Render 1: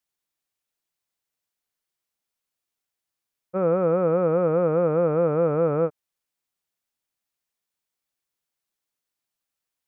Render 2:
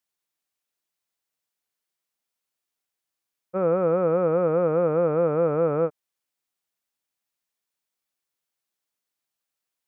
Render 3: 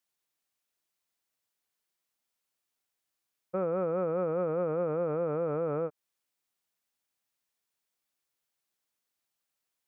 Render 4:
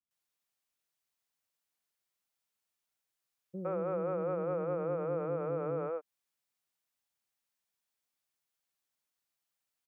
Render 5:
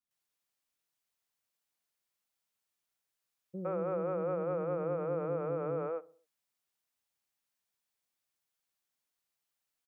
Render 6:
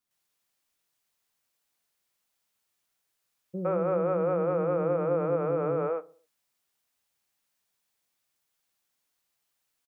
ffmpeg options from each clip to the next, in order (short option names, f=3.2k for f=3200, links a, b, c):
-af "lowshelf=f=120:g=-7"
-af "alimiter=limit=-22.5dB:level=0:latency=1:release=175"
-filter_complex "[0:a]acrossover=split=350[a][b];[b]adelay=110[c];[a][c]amix=inputs=2:normalize=0,volume=-2.5dB"
-filter_complex "[0:a]asplit=2[a][b];[b]adelay=64,lowpass=f=1.2k:p=1,volume=-19dB,asplit=2[c][d];[d]adelay=64,lowpass=f=1.2k:p=1,volume=0.53,asplit=2[e][f];[f]adelay=64,lowpass=f=1.2k:p=1,volume=0.53,asplit=2[g][h];[h]adelay=64,lowpass=f=1.2k:p=1,volume=0.53[i];[a][c][e][g][i]amix=inputs=5:normalize=0"
-filter_complex "[0:a]asplit=2[a][b];[b]adelay=23,volume=-13dB[c];[a][c]amix=inputs=2:normalize=0,volume=7dB"